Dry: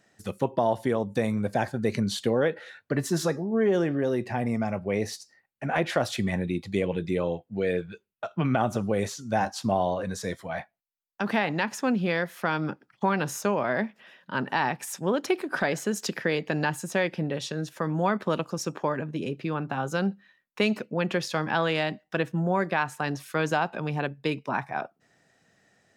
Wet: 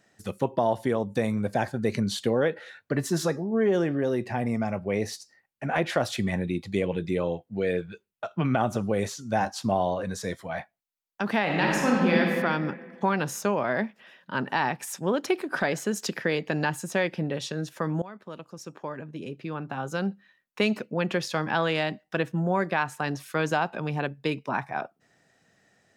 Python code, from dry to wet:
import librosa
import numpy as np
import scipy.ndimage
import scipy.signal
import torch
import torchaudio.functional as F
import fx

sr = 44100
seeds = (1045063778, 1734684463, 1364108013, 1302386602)

y = fx.reverb_throw(x, sr, start_s=11.42, length_s=0.78, rt60_s=1.8, drr_db=-3.0)
y = fx.edit(y, sr, fx.fade_in_from(start_s=18.02, length_s=2.6, floor_db=-20.0), tone=tone)